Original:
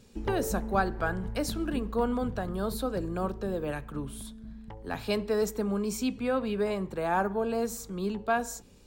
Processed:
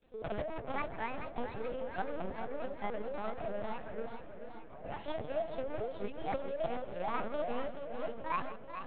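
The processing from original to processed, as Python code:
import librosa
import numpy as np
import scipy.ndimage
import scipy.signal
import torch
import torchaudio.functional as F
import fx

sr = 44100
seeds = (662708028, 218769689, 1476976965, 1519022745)

p1 = fx.pitch_ramps(x, sr, semitones=9.0, every_ms=289)
p2 = scipy.signal.sosfilt(scipy.signal.butter(4, 430.0, 'highpass', fs=sr, output='sos'), p1)
p3 = fx.tilt_eq(p2, sr, slope=-3.0)
p4 = 10.0 ** (-34.5 / 20.0) * (np.abs((p3 / 10.0 ** (-34.5 / 20.0) + 3.0) % 4.0 - 2.0) - 1.0)
p5 = p3 + (p4 * librosa.db_to_amplitude(-3.5))
p6 = fx.cheby_harmonics(p5, sr, harmonics=(3, 8), levels_db=(-43, -43), full_scale_db=-17.5)
p7 = fx.granulator(p6, sr, seeds[0], grain_ms=100.0, per_s=20.0, spray_ms=31.0, spread_st=0)
p8 = p7 + fx.echo_single(p7, sr, ms=151, db=-14.0, dry=0)
p9 = fx.lpc_vocoder(p8, sr, seeds[1], excitation='pitch_kept', order=8)
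p10 = fx.echo_warbled(p9, sr, ms=432, feedback_pct=62, rate_hz=2.8, cents=106, wet_db=-9)
y = p10 * librosa.db_to_amplitude(-5.5)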